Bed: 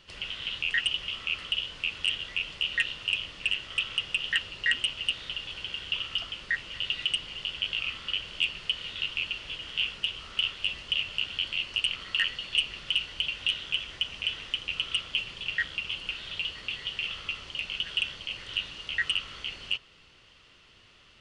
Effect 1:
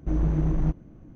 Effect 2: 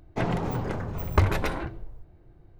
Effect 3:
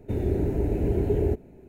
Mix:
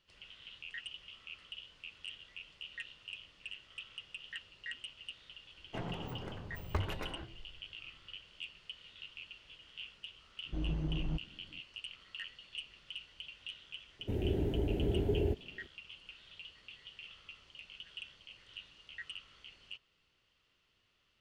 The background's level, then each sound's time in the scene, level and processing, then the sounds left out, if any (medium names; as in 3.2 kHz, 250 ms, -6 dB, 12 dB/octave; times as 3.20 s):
bed -18 dB
5.57 s: add 2 -14 dB
10.46 s: add 1 -12 dB
13.99 s: add 3 -8 dB